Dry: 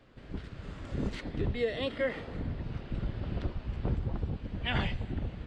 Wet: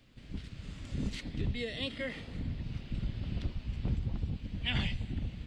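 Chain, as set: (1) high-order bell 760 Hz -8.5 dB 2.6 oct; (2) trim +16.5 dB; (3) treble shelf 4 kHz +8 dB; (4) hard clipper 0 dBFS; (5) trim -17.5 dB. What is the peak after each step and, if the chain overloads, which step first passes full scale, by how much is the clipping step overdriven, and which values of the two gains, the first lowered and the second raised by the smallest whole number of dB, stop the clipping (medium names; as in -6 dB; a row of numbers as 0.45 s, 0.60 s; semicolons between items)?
-19.5 dBFS, -3.0 dBFS, -2.0 dBFS, -2.0 dBFS, -19.5 dBFS; nothing clips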